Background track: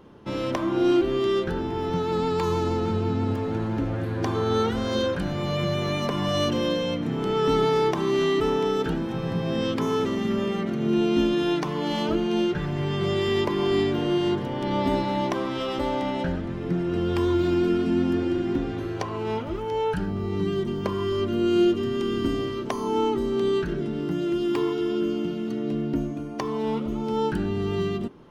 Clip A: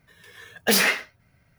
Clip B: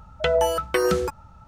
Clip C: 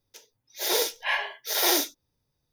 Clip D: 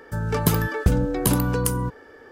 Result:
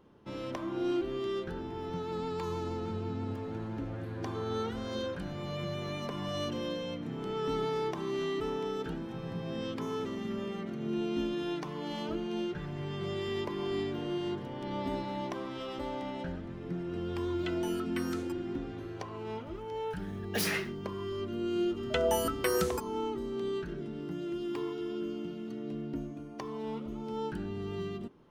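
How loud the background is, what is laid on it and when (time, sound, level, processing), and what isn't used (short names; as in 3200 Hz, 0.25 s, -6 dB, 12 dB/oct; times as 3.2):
background track -11 dB
17.22 add B -14.5 dB + HPF 1200 Hz
19.67 add A -13 dB
21.7 add B -8.5 dB + high shelf 7400 Hz +11.5 dB
not used: C, D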